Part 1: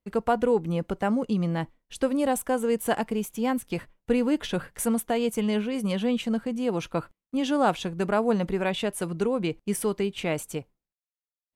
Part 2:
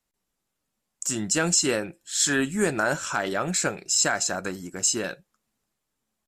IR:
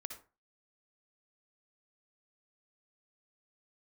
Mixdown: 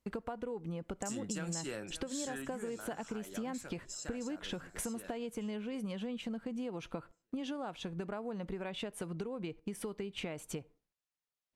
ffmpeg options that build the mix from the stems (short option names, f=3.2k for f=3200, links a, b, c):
-filter_complex "[0:a]highshelf=f=10k:g=-12,acompressor=threshold=-33dB:ratio=10,volume=2dB,asplit=2[a][b];[b]volume=-19dB[c];[1:a]acrossover=split=140[d][e];[e]acompressor=threshold=-24dB:ratio=3[f];[d][f]amix=inputs=2:normalize=0,volume=-7dB,afade=t=out:st=1.99:d=0.76:silence=0.281838,asplit=2[g][h];[h]volume=-19dB[i];[2:a]atrim=start_sample=2205[j];[c][j]afir=irnorm=-1:irlink=0[k];[i]aecho=0:1:573|1146|1719|2292|2865|3438:1|0.42|0.176|0.0741|0.0311|0.0131[l];[a][g][k][l]amix=inputs=4:normalize=0,acompressor=threshold=-39dB:ratio=2.5"